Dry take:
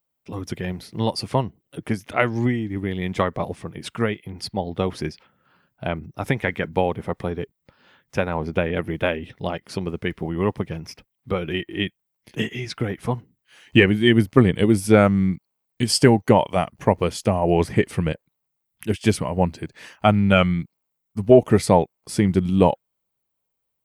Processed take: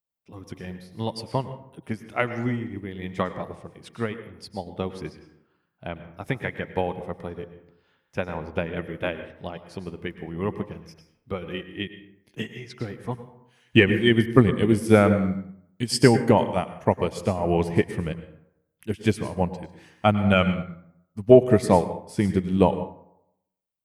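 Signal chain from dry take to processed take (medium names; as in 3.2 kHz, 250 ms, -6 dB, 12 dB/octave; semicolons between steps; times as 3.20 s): plate-style reverb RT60 0.8 s, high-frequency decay 0.5×, pre-delay 90 ms, DRR 7.5 dB; upward expansion 1.5:1, over -32 dBFS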